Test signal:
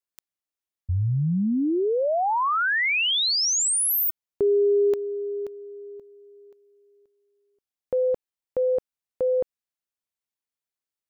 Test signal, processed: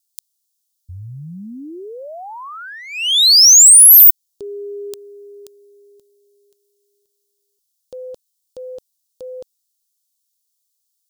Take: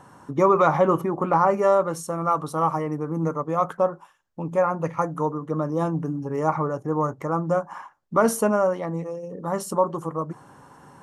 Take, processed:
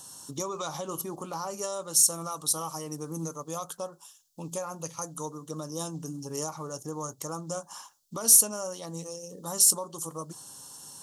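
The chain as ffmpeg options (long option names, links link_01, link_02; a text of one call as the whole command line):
ffmpeg -i in.wav -af "alimiter=limit=-16.5dB:level=0:latency=1:release=364,aexciter=amount=10.3:drive=9.4:freq=3300,volume=-9dB" out.wav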